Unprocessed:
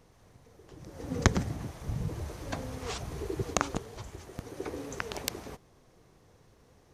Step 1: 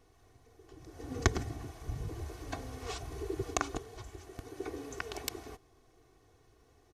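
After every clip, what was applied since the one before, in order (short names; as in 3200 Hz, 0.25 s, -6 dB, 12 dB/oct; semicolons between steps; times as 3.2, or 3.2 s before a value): comb 2.7 ms, depth 69%; gain -5.5 dB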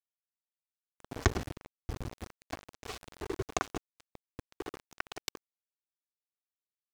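sample gate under -35 dBFS; high shelf 8900 Hz -10.5 dB; gain +1 dB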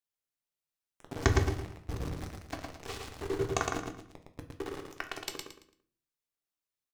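on a send: feedback echo 0.112 s, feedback 29%, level -4 dB; on the sum: shoebox room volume 41 m³, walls mixed, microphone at 0.34 m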